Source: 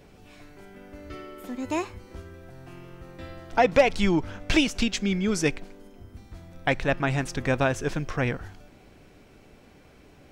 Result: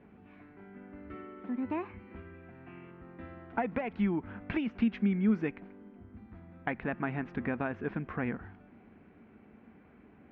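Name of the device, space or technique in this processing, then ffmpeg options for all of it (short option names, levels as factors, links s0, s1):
bass amplifier: -filter_complex "[0:a]acompressor=threshold=0.0631:ratio=4,highpass=76,equalizer=f=130:t=q:w=4:g=-6,equalizer=f=220:t=q:w=4:g=10,equalizer=f=560:t=q:w=4:g=-6,lowpass=f=2200:w=0.5412,lowpass=f=2200:w=1.3066,asettb=1/sr,asplit=3[s0][s1][s2];[s0]atrim=end=1.894[s3];[s1]atrim=start=1.89:end=2.91,asetpts=PTS-STARTPTS,afade=t=in:d=0.004:c=qsin,afade=t=out:st=1.016:d=0.004:c=qsin,equalizer=f=2500:t=o:w=0.77:g=8.5[s4];[s2]atrim=start=2.906[s5];[s3][s4]acrossfade=d=0.004:c1=hsin:c2=qsin[s6];[s6][s5]acrossfade=d=0.004:c1=qsin:c2=hsin,volume=0.596"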